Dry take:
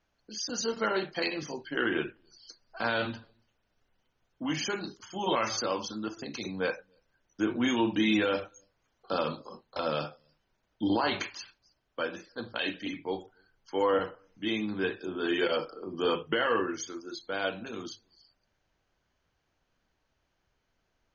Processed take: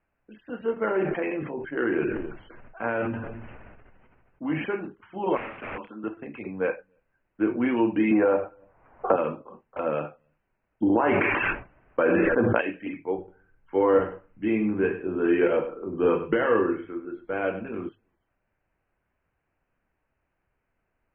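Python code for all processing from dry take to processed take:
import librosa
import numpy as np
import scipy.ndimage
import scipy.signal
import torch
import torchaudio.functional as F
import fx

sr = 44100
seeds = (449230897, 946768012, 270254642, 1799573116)

y = fx.chain(x, sr, fx.air_absorb(metres=270.0),
    fx.sustainer(db_per_s=26.0), at=(0.73, 4.66))
y = fx.chain(y, sr, fx.highpass(hz=240.0, slope=12),
    fx.overflow_wrap(gain_db=28.5), at=(5.37, 6.04))
y = fx.chain(y, sr, fx.lowpass(hz=1600.0, slope=12),
    fx.peak_eq(hz=820.0, db=8.0, octaves=1.3),
    fx.band_squash(depth_pct=100), at=(8.11, 9.16))
y = fx.chain(y, sr, fx.lowpass(hz=2500.0, slope=12),
    fx.gate_hold(open_db=-53.0, close_db=-58.0, hold_ms=71.0, range_db=-21, attack_ms=1.4, release_ms=100.0),
    fx.env_flatten(amount_pct=100), at=(10.82, 12.61))
y = fx.chain(y, sr, fx.low_shelf(hz=160.0, db=11.0),
    fx.doubler(ms=23.0, db=-11.0),
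    fx.echo_single(ms=98, db=-12.0), at=(13.18, 17.89))
y = scipy.signal.sosfilt(scipy.signal.butter(12, 2700.0, 'lowpass', fs=sr, output='sos'), y)
y = fx.dynamic_eq(y, sr, hz=410.0, q=0.91, threshold_db=-40.0, ratio=4.0, max_db=6)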